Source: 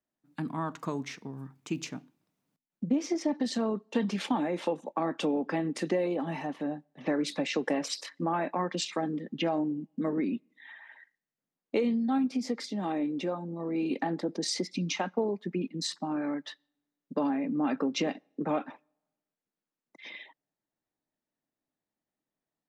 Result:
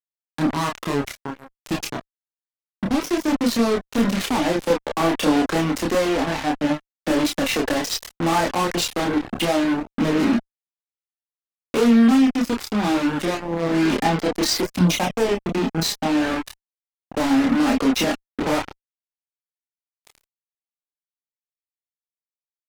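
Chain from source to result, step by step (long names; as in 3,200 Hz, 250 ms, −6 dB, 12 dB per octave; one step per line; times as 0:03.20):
harmonic generator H 2 −25 dB, 3 −12 dB, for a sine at −16 dBFS
fuzz pedal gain 48 dB, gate −47 dBFS
multi-voice chorus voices 4, 0.26 Hz, delay 28 ms, depth 2.5 ms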